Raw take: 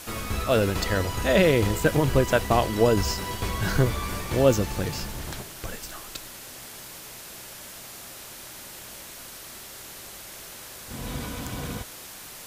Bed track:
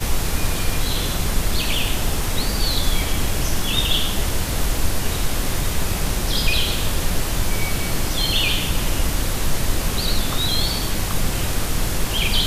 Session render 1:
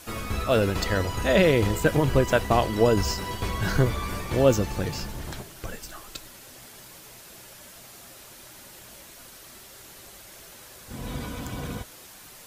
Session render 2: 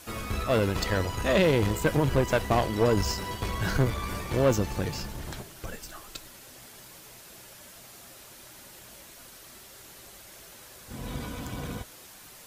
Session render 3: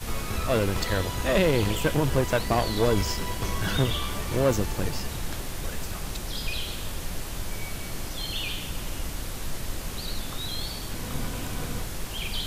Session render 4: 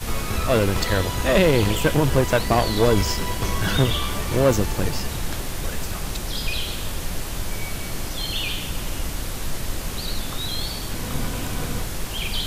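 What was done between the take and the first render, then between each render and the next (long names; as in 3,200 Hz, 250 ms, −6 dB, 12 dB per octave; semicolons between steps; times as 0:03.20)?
broadband denoise 6 dB, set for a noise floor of −42 dBFS
tube saturation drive 15 dB, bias 0.5
mix in bed track −12 dB
level +5 dB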